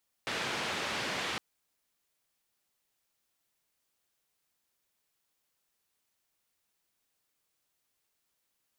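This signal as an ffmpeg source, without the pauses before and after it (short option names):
-f lavfi -i "anoisesrc=c=white:d=1.11:r=44100:seed=1,highpass=f=110,lowpass=f=3100,volume=-21.9dB"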